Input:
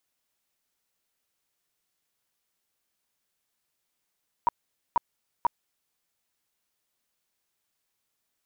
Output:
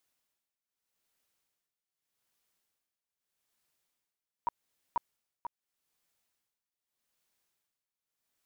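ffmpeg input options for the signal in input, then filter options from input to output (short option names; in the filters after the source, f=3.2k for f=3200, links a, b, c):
-f lavfi -i "aevalsrc='0.133*sin(2*PI*952*mod(t,0.49))*lt(mod(t,0.49),16/952)':d=1.47:s=44100"
-af "tremolo=f=0.82:d=0.84,alimiter=level_in=0.5dB:limit=-24dB:level=0:latency=1:release=12,volume=-0.5dB"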